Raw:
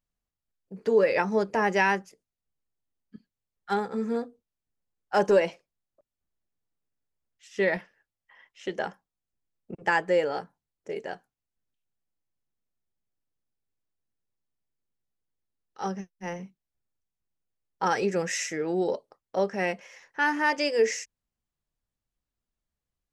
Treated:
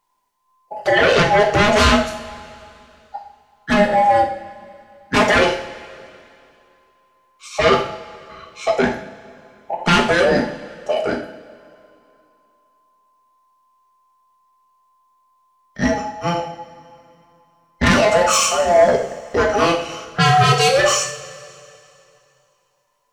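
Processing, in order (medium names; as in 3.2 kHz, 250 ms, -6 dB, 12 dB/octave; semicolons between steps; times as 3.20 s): every band turned upside down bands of 1 kHz; sine folder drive 12 dB, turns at -10 dBFS; two-slope reverb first 0.53 s, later 2.7 s, from -18 dB, DRR 1 dB; trim -2 dB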